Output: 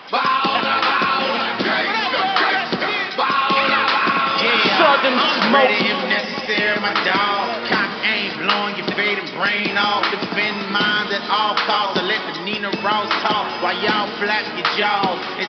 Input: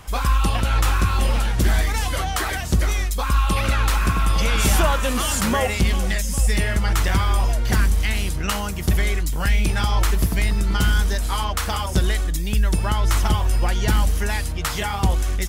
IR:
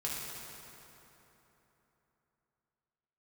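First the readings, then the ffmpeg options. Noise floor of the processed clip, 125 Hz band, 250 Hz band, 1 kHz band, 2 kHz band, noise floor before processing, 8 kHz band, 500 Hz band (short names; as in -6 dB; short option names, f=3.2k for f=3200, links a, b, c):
-28 dBFS, -15.0 dB, +2.5 dB, +9.0 dB, +9.5 dB, -26 dBFS, under -15 dB, +7.5 dB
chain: -filter_complex "[0:a]highpass=f=210:w=0.5412,highpass=f=210:w=1.3066,lowshelf=f=270:g=-8,aecho=1:1:579:0.178,asplit=2[a][b];[1:a]atrim=start_sample=2205[c];[b][c]afir=irnorm=-1:irlink=0,volume=-11dB[d];[a][d]amix=inputs=2:normalize=0,aresample=11025,aresample=44100,volume=7.5dB"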